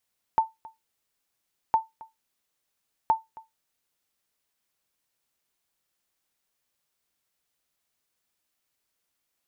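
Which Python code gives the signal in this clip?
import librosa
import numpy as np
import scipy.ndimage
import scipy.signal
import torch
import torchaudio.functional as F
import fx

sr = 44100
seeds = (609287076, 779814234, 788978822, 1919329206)

y = fx.sonar_ping(sr, hz=891.0, decay_s=0.18, every_s=1.36, pings=3, echo_s=0.27, echo_db=-22.5, level_db=-12.5)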